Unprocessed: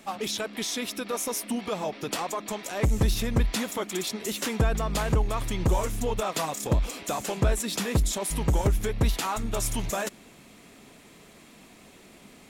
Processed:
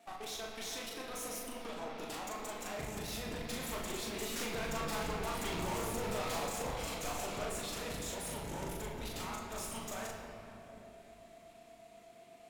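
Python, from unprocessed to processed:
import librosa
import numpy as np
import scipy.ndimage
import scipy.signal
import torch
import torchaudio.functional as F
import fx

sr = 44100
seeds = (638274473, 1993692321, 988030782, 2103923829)

y = fx.doppler_pass(x, sr, speed_mps=5, closest_m=4.8, pass_at_s=5.52)
y = fx.highpass(y, sr, hz=290.0, slope=6)
y = fx.level_steps(y, sr, step_db=12)
y = fx.tube_stage(y, sr, drive_db=48.0, bias=0.75)
y = y + 10.0 ** (-68.0 / 20.0) * np.sin(2.0 * np.pi * 680.0 * np.arange(len(y)) / sr)
y = fx.vibrato(y, sr, rate_hz=8.2, depth_cents=58.0)
y = fx.doubler(y, sr, ms=39.0, db=-3)
y = fx.room_shoebox(y, sr, seeds[0], volume_m3=200.0, walls='hard', distance_m=0.47)
y = y * librosa.db_to_amplitude(8.0)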